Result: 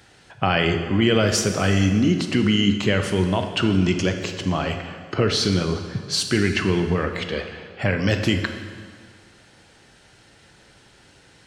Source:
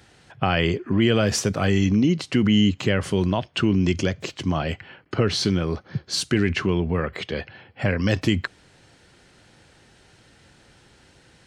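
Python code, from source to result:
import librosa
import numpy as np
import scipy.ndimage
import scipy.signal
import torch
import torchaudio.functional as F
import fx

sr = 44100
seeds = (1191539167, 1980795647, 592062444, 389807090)

y = fx.low_shelf(x, sr, hz=390.0, db=-3.5)
y = fx.rev_plate(y, sr, seeds[0], rt60_s=1.8, hf_ratio=0.9, predelay_ms=0, drr_db=5.5)
y = y * librosa.db_to_amplitude(2.0)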